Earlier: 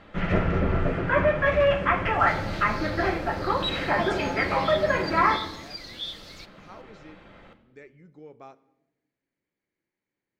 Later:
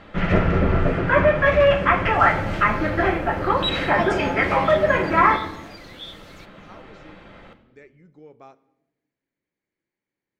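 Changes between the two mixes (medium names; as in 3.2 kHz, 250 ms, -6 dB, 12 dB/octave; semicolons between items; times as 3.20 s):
first sound +5.0 dB; second sound: add peaking EQ 4.7 kHz -9.5 dB 0.69 oct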